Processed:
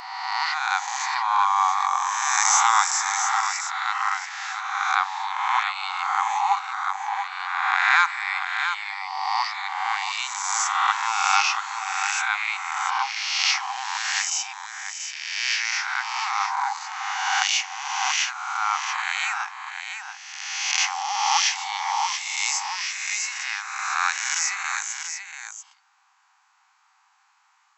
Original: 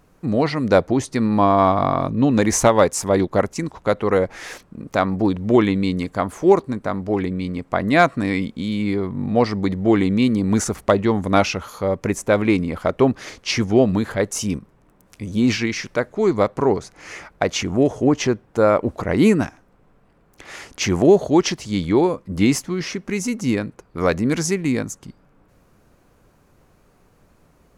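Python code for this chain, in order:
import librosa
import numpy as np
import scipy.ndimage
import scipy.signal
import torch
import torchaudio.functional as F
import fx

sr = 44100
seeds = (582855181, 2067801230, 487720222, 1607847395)

p1 = fx.spec_swells(x, sr, rise_s=1.6)
p2 = fx.brickwall_bandpass(p1, sr, low_hz=750.0, high_hz=7900.0)
p3 = p2 + fx.echo_multitap(p2, sr, ms=(52, 684), db=(-17.5, -7.5), dry=0)
y = F.gain(torch.from_numpy(p3), -2.0).numpy()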